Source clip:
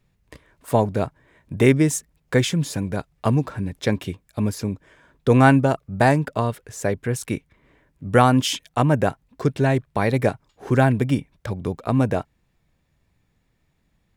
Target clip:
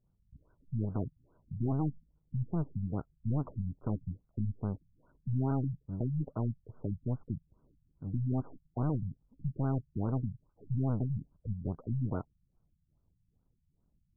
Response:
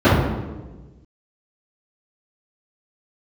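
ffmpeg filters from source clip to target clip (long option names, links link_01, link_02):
-filter_complex "[0:a]aeval=exprs='if(lt(val(0),0),0.447*val(0),val(0))':channel_layout=same,lowshelf=frequency=270:gain=6.5,aeval=exprs='(tanh(20*val(0)+0.7)-tanh(0.7))/20':channel_layout=same,asplit=2[link_01][link_02];[link_02]aeval=exprs='val(0)*gte(abs(val(0)),0.0126)':channel_layout=same,volume=-6dB[link_03];[link_01][link_03]amix=inputs=2:normalize=0,afftfilt=real='re*lt(b*sr/1024,200*pow(1600/200,0.5+0.5*sin(2*PI*2.4*pts/sr)))':imag='im*lt(b*sr/1024,200*pow(1600/200,0.5+0.5*sin(2*PI*2.4*pts/sr)))':win_size=1024:overlap=0.75,volume=-5.5dB"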